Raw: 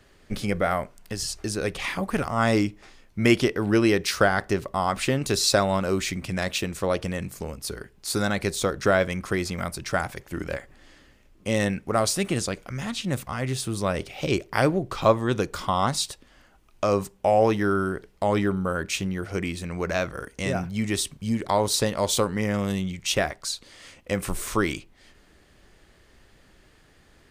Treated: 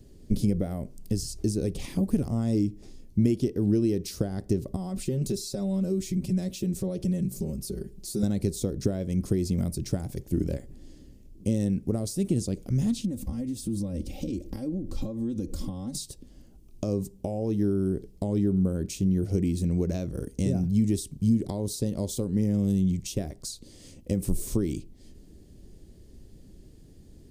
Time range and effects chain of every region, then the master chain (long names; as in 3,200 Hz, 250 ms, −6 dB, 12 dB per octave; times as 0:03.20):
0:04.76–0:08.23: comb filter 5.3 ms, depth 95% + downward compressor 2 to 1, threshold −37 dBFS
0:13.04–0:15.95: downward compressor 10 to 1, threshold −36 dBFS + low-shelf EQ 220 Hz +6 dB + comb filter 3.7 ms, depth 85%
whole clip: high-shelf EQ 6,000 Hz +9.5 dB; downward compressor, threshold −27 dBFS; drawn EQ curve 250 Hz 0 dB, 380 Hz −4 dB, 1,300 Hz −29 dB, 2,000 Hz −26 dB, 5,000 Hz −15 dB; level +8.5 dB